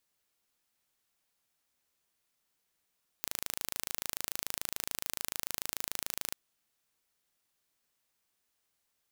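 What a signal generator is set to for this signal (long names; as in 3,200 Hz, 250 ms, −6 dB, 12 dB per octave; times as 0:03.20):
impulse train 26.9 per second, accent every 0, −7 dBFS 3.12 s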